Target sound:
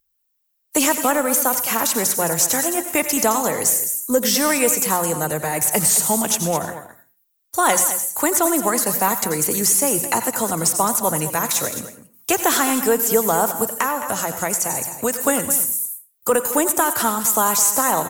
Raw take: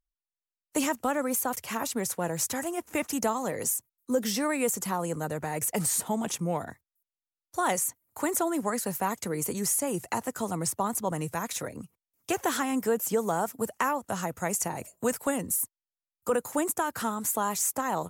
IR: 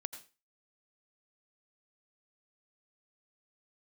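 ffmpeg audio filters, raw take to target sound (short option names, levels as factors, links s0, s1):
-filter_complex "[0:a]bandreject=f=60:t=h:w=6,bandreject=f=120:t=h:w=6,bandreject=f=180:t=h:w=6,aecho=1:1:214:0.224,aeval=exprs='0.188*(cos(1*acos(clip(val(0)/0.188,-1,1)))-cos(1*PI/2))+0.00266*(cos(6*acos(clip(val(0)/0.188,-1,1)))-cos(6*PI/2))':c=same,asplit=2[s0][s1];[s1]aemphasis=mode=production:type=bsi[s2];[1:a]atrim=start_sample=2205[s3];[s2][s3]afir=irnorm=-1:irlink=0,volume=2.82[s4];[s0][s4]amix=inputs=2:normalize=0,acrossover=split=6900[s5][s6];[s6]acompressor=threshold=0.112:ratio=4:attack=1:release=60[s7];[s5][s7]amix=inputs=2:normalize=0,equalizer=f=120:t=o:w=0.77:g=4,asettb=1/sr,asplit=3[s8][s9][s10];[s8]atrim=end=13.634[s11];[s9]atrim=start=13.63:end=15.27,asetpts=PTS-STARTPTS,afade=t=in:d=0.004:c=qsin,afade=t=out:st=1.636:d=0.004:c=qsin,acompressor=threshold=0.1:ratio=2[s12];[s10]atrim=start=15.266[s13];[s11][s12]acrossfade=d=0.004:c1=hsin:c2=qsin[s14];[s14][s13]acrossfade=d=0.004:c1=qsin:c2=hsin"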